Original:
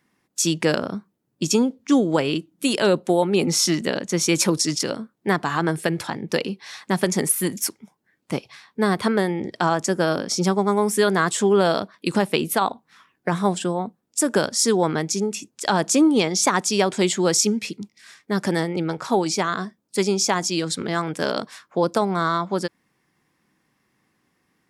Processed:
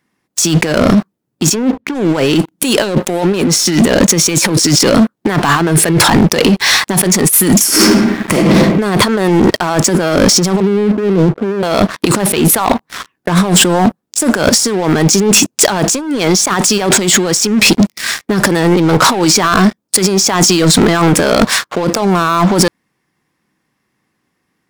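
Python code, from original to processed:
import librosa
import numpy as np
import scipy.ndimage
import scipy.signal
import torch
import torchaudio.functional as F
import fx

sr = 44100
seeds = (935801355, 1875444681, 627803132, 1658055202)

y = fx.air_absorb(x, sr, metres=350.0, at=(1.54, 1.94), fade=0.02)
y = fx.reverb_throw(y, sr, start_s=7.63, length_s=0.7, rt60_s=1.1, drr_db=-9.5)
y = fx.cheby1_bandpass(y, sr, low_hz=150.0, high_hz=510.0, order=4, at=(10.6, 11.63))
y = fx.over_compress(y, sr, threshold_db=-31.0, ratio=-1.0)
y = fx.leveller(y, sr, passes=5)
y = y * librosa.db_to_amplitude(3.5)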